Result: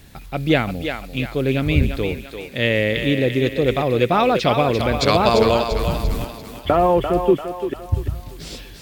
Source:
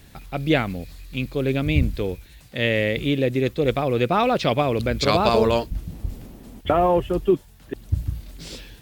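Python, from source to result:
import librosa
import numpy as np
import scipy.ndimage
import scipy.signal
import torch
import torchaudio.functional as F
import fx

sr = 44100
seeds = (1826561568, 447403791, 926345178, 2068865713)

p1 = fx.leveller(x, sr, passes=3, at=(5.79, 6.25))
p2 = p1 + fx.echo_thinned(p1, sr, ms=343, feedback_pct=49, hz=440.0, wet_db=-6, dry=0)
y = p2 * librosa.db_to_amplitude(2.5)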